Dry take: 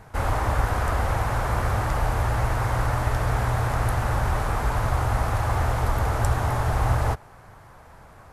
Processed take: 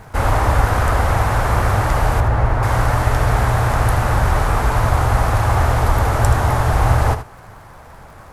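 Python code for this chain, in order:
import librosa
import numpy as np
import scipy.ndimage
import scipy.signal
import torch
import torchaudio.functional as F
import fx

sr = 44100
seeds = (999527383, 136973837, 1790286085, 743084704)

y = fx.dmg_crackle(x, sr, seeds[0], per_s=100.0, level_db=-49.0)
y = fx.lowpass(y, sr, hz=1500.0, slope=6, at=(2.2, 2.63))
y = y + 10.0 ** (-11.0 / 20.0) * np.pad(y, (int(78 * sr / 1000.0), 0))[:len(y)]
y = F.gain(torch.from_numpy(y), 7.5).numpy()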